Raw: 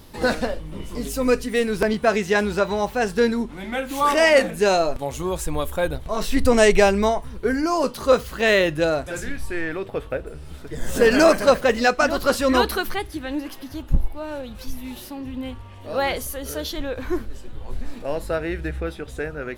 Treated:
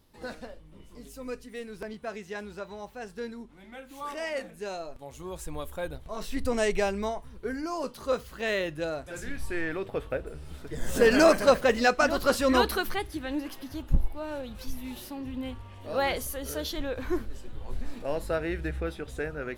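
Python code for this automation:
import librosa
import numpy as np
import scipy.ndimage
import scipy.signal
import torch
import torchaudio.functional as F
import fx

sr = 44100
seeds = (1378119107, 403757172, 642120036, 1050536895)

y = fx.gain(x, sr, db=fx.line((4.9, -18.0), (5.44, -11.5), (9.02, -11.5), (9.42, -4.5)))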